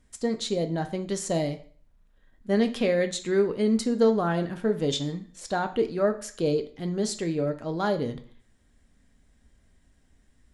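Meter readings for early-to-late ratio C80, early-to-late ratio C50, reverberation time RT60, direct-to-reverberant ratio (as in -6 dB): 18.0 dB, 13.5 dB, 0.50 s, 6.0 dB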